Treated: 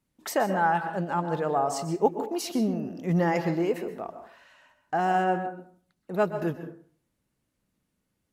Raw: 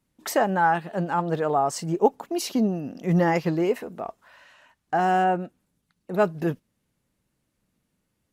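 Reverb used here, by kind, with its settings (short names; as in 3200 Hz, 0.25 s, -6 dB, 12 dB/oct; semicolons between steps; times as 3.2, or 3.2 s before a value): plate-style reverb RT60 0.51 s, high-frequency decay 0.5×, pre-delay 0.115 s, DRR 9 dB; gain -3.5 dB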